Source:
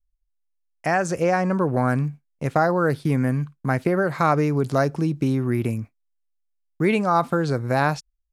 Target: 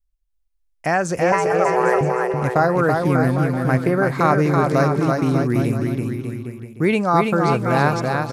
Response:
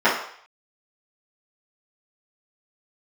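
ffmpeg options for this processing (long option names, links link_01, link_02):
-filter_complex "[0:a]asettb=1/sr,asplit=3[link_01][link_02][link_03];[link_01]atrim=end=1.324[link_04];[link_02]atrim=start=1.32:end=2.01,asetpts=PTS-STARTPTS,afade=type=in:duration=0.004:curve=qsin,afade=type=out:start_time=0.686:duration=0.004:curve=qsin,afreqshift=250[link_05];[link_03]atrim=start=2.006[link_06];[link_04][link_05]acrossfade=duration=0.004:curve1=hsin:curve2=qsin[link_07];[link_07][link_06]acrossfade=duration=0.004:curve1=qsin:curve2=hsin,aecho=1:1:330|594|805.2|974.2|1109:0.631|0.398|0.251|0.158|0.1,volume=2dB"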